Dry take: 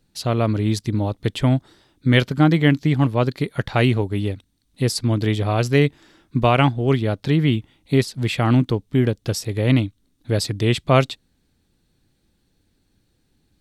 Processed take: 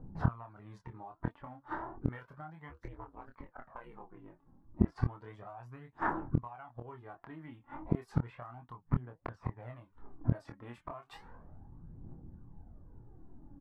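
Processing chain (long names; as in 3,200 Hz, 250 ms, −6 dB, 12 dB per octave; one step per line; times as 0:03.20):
flat-topped bell 1,100 Hz +8 dB
0:02.69–0:04.90: ring modulation 210 Hz → 52 Hz
low-pass that shuts in the quiet parts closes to 320 Hz, open at −14 dBFS
flanger 1.5 Hz, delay 3.8 ms, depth 4.5 ms, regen +73%
octave-band graphic EQ 125/1,000/4,000/8,000 Hz +3/+12/−11/−6 dB
phase shifter 0.33 Hz, delay 3.8 ms, feedback 53%
downward compressor 16 to 1, threshold −20 dBFS, peak gain reduction 19 dB
gate with flip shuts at −27 dBFS, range −38 dB
double-tracking delay 25 ms −5 dB
level +13 dB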